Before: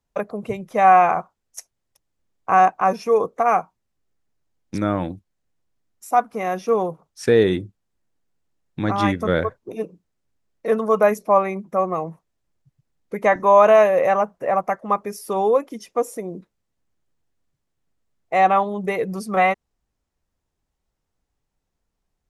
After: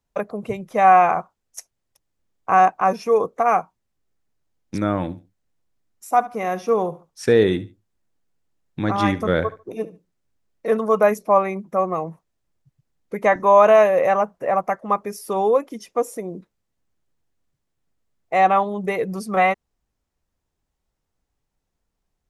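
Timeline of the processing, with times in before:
0:04.90–0:10.77: repeating echo 72 ms, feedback 25%, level −17.5 dB

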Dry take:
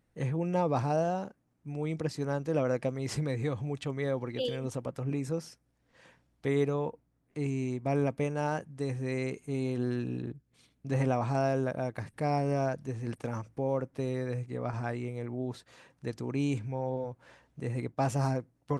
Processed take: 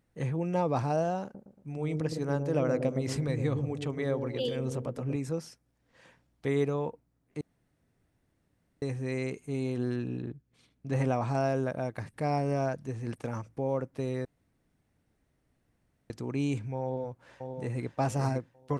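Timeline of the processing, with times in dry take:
0:01.23–0:05.16: delay with a low-pass on its return 114 ms, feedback 45%, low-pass 490 Hz, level −3 dB
0:07.41–0:08.82: fill with room tone
0:09.96–0:10.93: high-shelf EQ 6,500 Hz −7.5 dB
0:14.25–0:16.10: fill with room tone
0:16.83–0:17.81: delay throw 570 ms, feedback 30%, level −6 dB

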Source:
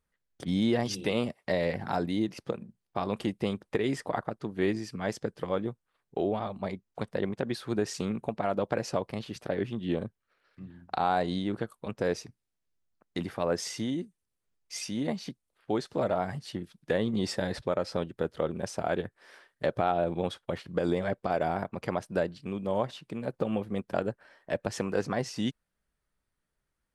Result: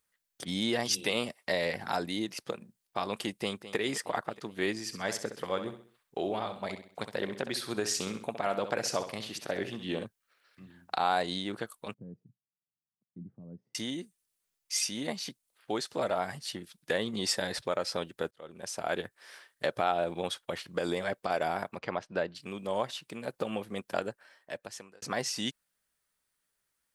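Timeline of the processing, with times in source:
0:03.34–0:03.76: delay throw 210 ms, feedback 65%, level −13.5 dB
0:04.79–0:10.05: repeating echo 65 ms, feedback 40%, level −10 dB
0:11.94–0:13.75: flat-topped band-pass 150 Hz, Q 1.4
0:18.31–0:18.96: fade in
0:21.78–0:22.35: high-frequency loss of the air 180 metres
0:23.95–0:25.02: fade out
whole clip: spectral tilt +3 dB per octave

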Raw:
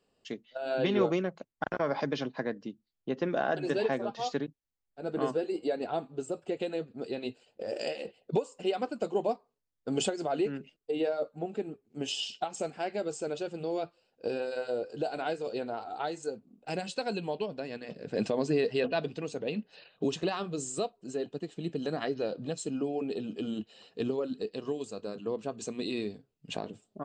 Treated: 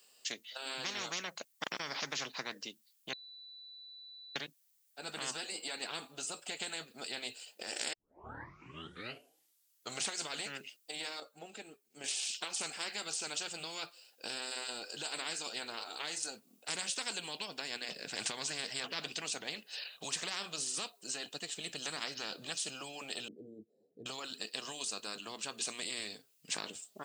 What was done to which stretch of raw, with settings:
0:03.13–0:04.36: beep over 3,970 Hz −22.5 dBFS
0:07.93: tape start 2.13 s
0:11.20–0:12.04: clip gain −7 dB
0:23.28–0:24.06: inverse Chebyshev low-pass filter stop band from 1,100 Hz, stop band 50 dB
whole clip: first difference; every bin compressed towards the loudest bin 10 to 1; level +2.5 dB

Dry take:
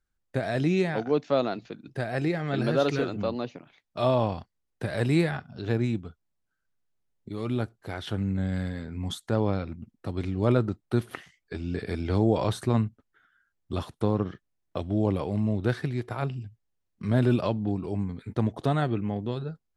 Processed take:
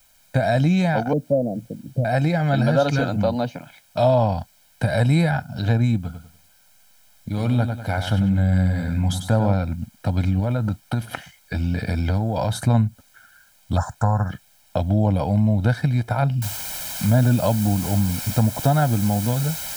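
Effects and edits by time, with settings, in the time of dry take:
0:01.13–0:02.05: elliptic low-pass filter 550 Hz, stop band 70 dB
0:05.97–0:09.54: repeating echo 97 ms, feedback 30%, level −8 dB
0:10.39–0:12.66: downward compressor, threshold −27 dBFS
0:13.77–0:14.30: drawn EQ curve 110 Hz 0 dB, 350 Hz −13 dB, 750 Hz +4 dB, 1,700 Hz +8 dB, 2,700 Hz −30 dB, 7,300 Hz +14 dB, 11,000 Hz −25 dB
0:16.42: noise floor change −69 dB −42 dB
whole clip: comb filter 1.3 ms, depth 87%; dynamic equaliser 2,600 Hz, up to −5 dB, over −44 dBFS, Q 0.75; downward compressor 2 to 1, threshold −26 dBFS; level +9 dB

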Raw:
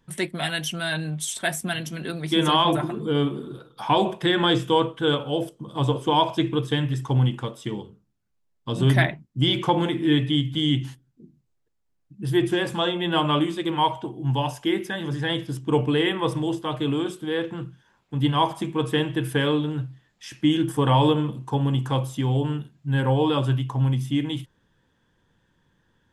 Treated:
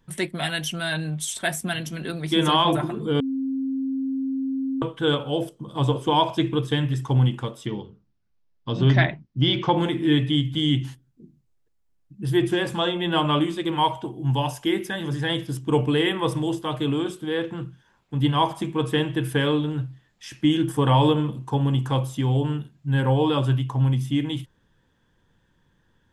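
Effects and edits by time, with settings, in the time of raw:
0:03.20–0:04.82: beep over 267 Hz −23.5 dBFS
0:07.66–0:09.77: Butterworth low-pass 5,900 Hz
0:13.72–0:16.86: high-shelf EQ 7,800 Hz +6 dB
whole clip: low-shelf EQ 66 Hz +6 dB

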